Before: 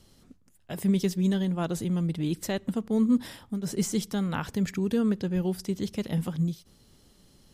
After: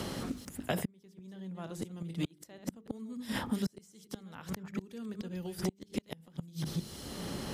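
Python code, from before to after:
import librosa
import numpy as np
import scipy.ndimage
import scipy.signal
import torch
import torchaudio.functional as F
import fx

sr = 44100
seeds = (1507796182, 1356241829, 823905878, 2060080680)

y = fx.reverse_delay(x, sr, ms=151, wet_db=-9.5)
y = scipy.signal.sosfilt(scipy.signal.butter(2, 41.0, 'highpass', fs=sr, output='sos'), y)
y = fx.low_shelf(y, sr, hz=250.0, db=-2.5)
y = fx.hum_notches(y, sr, base_hz=50, count=9)
y = fx.gate_flip(y, sr, shuts_db=-24.0, range_db=-38)
y = fx.band_squash(y, sr, depth_pct=100)
y = y * librosa.db_to_amplitude(10.0)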